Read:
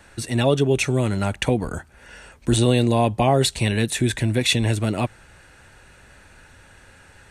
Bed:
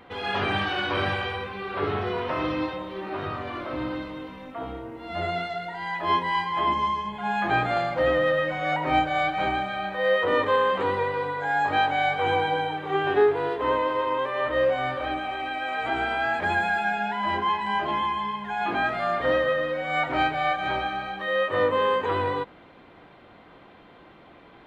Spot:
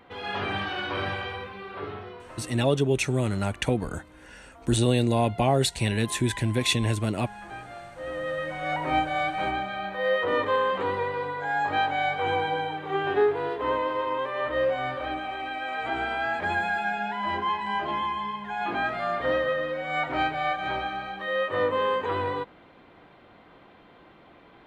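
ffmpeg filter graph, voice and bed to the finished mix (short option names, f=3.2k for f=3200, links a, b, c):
-filter_complex "[0:a]adelay=2200,volume=-4.5dB[a];[1:a]volume=10.5dB,afade=t=out:st=1.41:d=0.82:silence=0.223872,afade=t=in:st=7.96:d=0.82:silence=0.188365[b];[a][b]amix=inputs=2:normalize=0"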